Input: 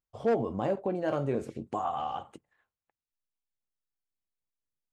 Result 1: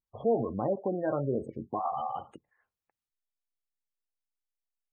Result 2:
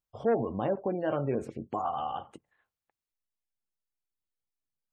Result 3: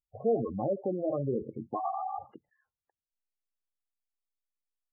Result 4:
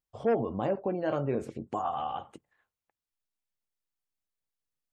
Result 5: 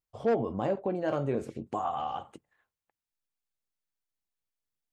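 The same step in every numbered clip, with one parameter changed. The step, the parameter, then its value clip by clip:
spectral gate, under each frame's peak: -20, -35, -10, -45, -60 dB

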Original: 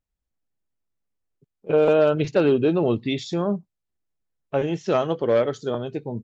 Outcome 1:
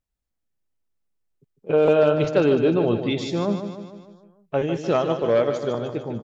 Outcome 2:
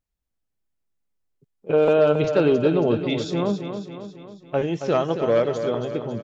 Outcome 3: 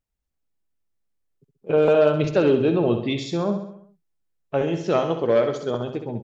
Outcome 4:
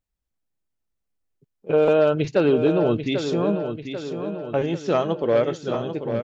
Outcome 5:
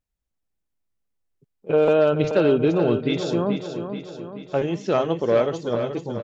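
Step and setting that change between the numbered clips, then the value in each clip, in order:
feedback echo, time: 150, 274, 66, 791, 431 ms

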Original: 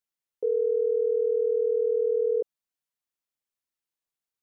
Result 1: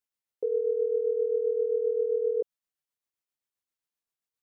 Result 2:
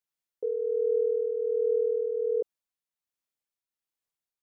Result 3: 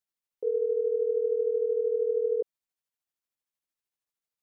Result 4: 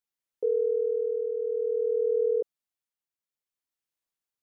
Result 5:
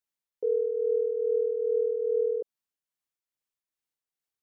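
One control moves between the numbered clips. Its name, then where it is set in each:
tremolo, rate: 7.6, 1.3, 13, 0.56, 2.4 Hz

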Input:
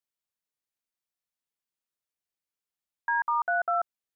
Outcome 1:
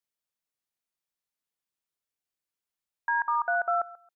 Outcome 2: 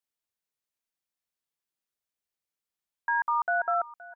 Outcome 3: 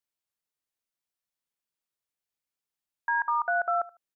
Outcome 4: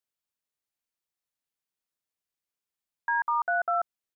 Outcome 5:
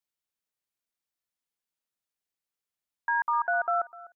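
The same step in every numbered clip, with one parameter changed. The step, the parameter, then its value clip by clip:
feedback echo, time: 136, 520, 76, 1208, 251 ms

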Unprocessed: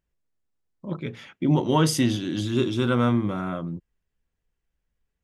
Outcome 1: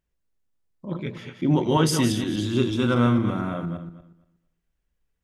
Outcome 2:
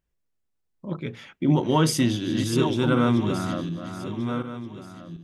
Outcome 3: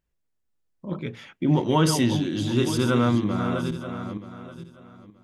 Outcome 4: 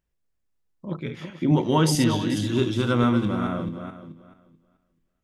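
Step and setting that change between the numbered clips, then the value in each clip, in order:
regenerating reverse delay, time: 0.118, 0.738, 0.464, 0.217 s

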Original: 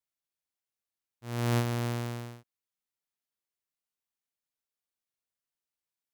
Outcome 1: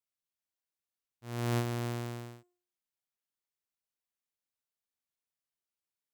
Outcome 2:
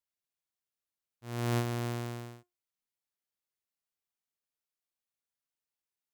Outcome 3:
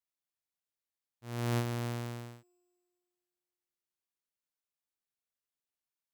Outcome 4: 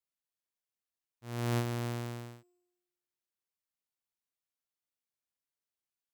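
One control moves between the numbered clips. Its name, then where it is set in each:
resonator, decay: 0.48, 0.21, 2.2, 1.1 s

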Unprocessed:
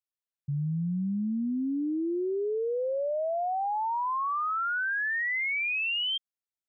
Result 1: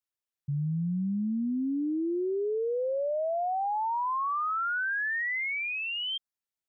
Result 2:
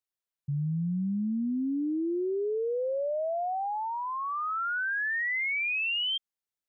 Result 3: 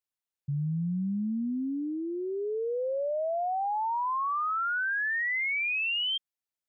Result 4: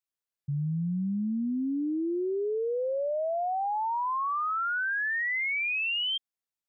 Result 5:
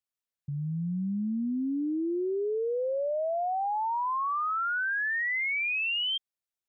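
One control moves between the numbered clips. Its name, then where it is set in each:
dynamic EQ, frequency: 2700, 1000, 340, 10000, 130 Hz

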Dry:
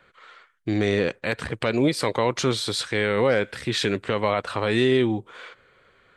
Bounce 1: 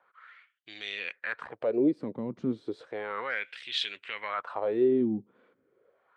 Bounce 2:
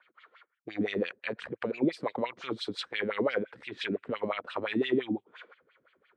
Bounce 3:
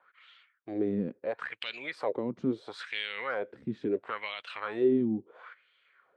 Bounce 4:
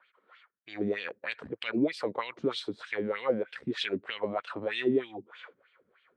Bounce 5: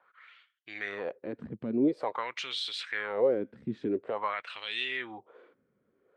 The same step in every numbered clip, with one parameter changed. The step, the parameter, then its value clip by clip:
wah, rate: 0.33, 5.8, 0.74, 3.2, 0.48 Hz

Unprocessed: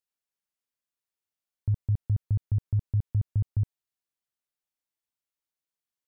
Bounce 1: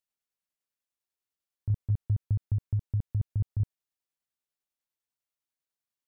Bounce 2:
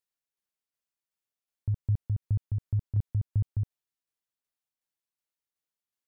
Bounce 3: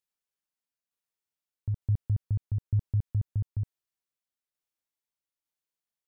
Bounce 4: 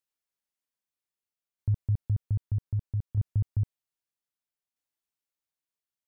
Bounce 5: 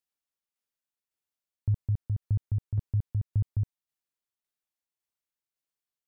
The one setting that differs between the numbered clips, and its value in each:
tremolo, rate: 10, 2.7, 1.1, 0.63, 1.8 Hz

